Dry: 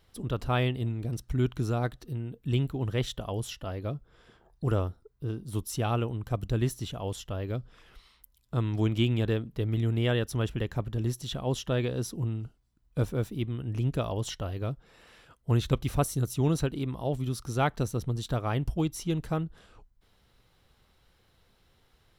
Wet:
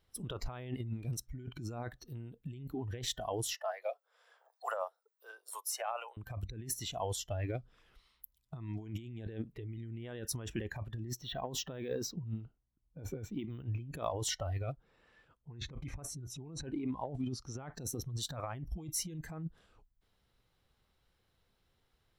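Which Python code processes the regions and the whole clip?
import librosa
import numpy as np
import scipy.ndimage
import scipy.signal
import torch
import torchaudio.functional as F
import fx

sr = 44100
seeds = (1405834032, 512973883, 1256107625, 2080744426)

y = fx.chain(x, sr, fx.steep_highpass(hz=510.0, slope=48),
    fx.peak_eq(hz=3200.0, db=-4.0, octaves=0.89),
    fx.band_squash(depth_pct=40), at=(3.54, 6.17))
y = fx.chain(y, sr, fx.env_lowpass(base_hz=900.0, full_db=-24.0),
    fx.resample_linear(factor=2), at=(11.05, 13.86))
y = fx.chain(y, sr, fx.lowpass(hz=9600.0, slope=12),
    fx.high_shelf(hz=3300.0, db=-9.5),
    fx.notch(hz=690.0, q=23.0), at=(14.72, 17.72))
y = fx.noise_reduce_blind(y, sr, reduce_db=15)
y = fx.dynamic_eq(y, sr, hz=3100.0, q=1.9, threshold_db=-52.0, ratio=4.0, max_db=-6)
y = fx.over_compress(y, sr, threshold_db=-38.0, ratio=-1.0)
y = y * librosa.db_to_amplitude(-2.0)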